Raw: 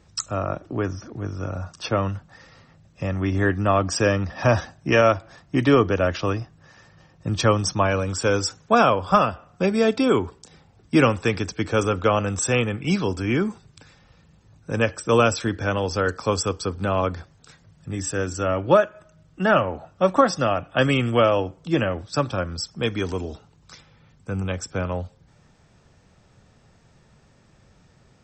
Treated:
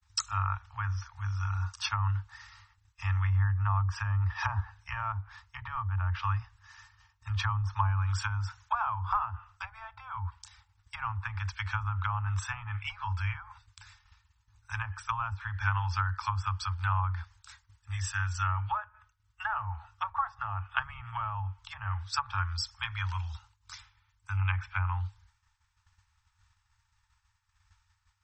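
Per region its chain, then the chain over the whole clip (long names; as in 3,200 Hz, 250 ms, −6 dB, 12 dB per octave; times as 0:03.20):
0:24.37–0:24.90: low-pass with resonance 2,500 Hz, resonance Q 2.5 + parametric band 490 Hz +6.5 dB 1.5 octaves
whole clip: treble cut that deepens with the level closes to 680 Hz, closed at −16.5 dBFS; Chebyshev band-stop filter 100–880 Hz, order 5; downward expander −51 dBFS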